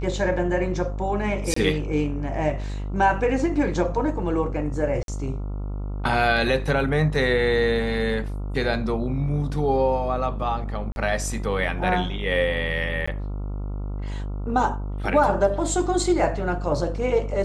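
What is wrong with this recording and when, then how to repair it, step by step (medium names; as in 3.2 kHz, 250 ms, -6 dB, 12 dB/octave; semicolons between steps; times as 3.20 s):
buzz 50 Hz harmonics 28 -29 dBFS
1.54–1.56 s: dropout 24 ms
5.03–5.08 s: dropout 52 ms
10.92–10.96 s: dropout 41 ms
13.06–13.07 s: dropout 15 ms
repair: de-hum 50 Hz, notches 28; interpolate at 1.54 s, 24 ms; interpolate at 5.03 s, 52 ms; interpolate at 10.92 s, 41 ms; interpolate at 13.06 s, 15 ms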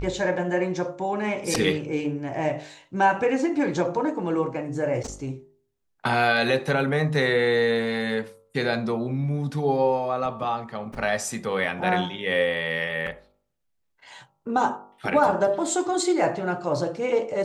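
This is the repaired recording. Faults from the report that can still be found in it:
nothing left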